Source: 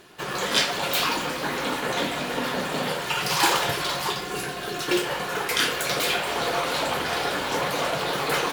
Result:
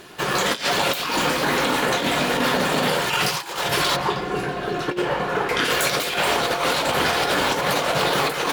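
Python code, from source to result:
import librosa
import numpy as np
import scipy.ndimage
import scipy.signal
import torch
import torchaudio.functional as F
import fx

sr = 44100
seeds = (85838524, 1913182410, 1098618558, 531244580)

y = fx.lowpass(x, sr, hz=1200.0, slope=6, at=(3.95, 5.64), fade=0.02)
y = fx.over_compress(y, sr, threshold_db=-27.0, ratio=-0.5)
y = y * librosa.db_to_amplitude(6.0)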